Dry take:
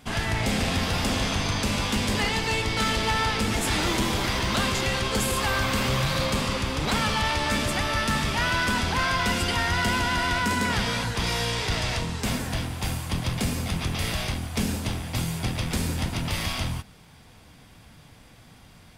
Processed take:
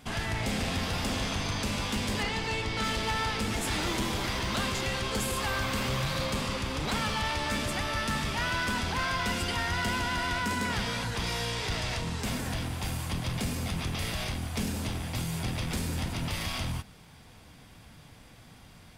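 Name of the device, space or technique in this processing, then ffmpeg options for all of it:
clipper into limiter: -filter_complex "[0:a]asoftclip=type=hard:threshold=0.112,alimiter=limit=0.0708:level=0:latency=1:release=30,asettb=1/sr,asplit=3[s0][s1][s2];[s0]atrim=end=2.234[s3];[s1]atrim=start=2.23:end=2.84,asetpts=PTS-STARTPTS,afade=t=in:d=0.004:c=qsin,afade=t=out:st=0.606:d=0.004:c=qsin,highshelf=f=10000:g=-11.5[s4];[s2]atrim=start=2.836[s5];[s3][s4]acrossfade=d=0.004:c1=hsin:c2=qsin[s6];[s6][s5]acrossfade=d=0.004:c1=qsin:c2=hsin,volume=0.841"

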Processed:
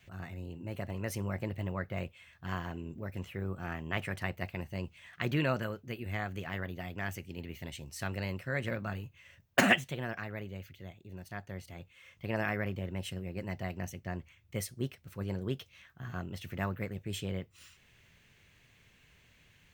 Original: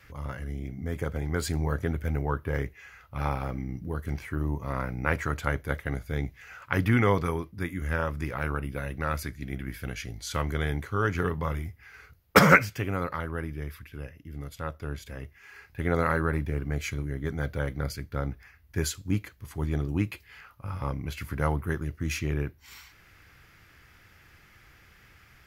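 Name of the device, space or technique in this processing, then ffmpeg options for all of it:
nightcore: -af "asetrate=56889,aresample=44100,volume=0.422"

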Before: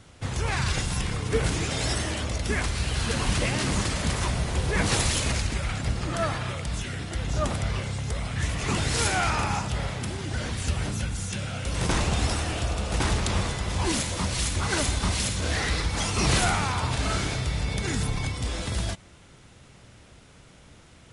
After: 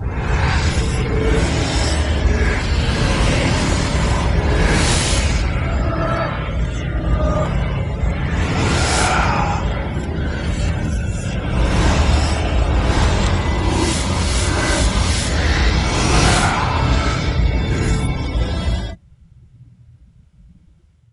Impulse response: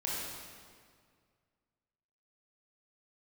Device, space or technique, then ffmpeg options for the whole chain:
reverse reverb: -filter_complex "[0:a]areverse[s0];[1:a]atrim=start_sample=2205[s1];[s0][s1]afir=irnorm=-1:irlink=0,areverse,afftdn=nr=24:nf=-34,volume=1.68"

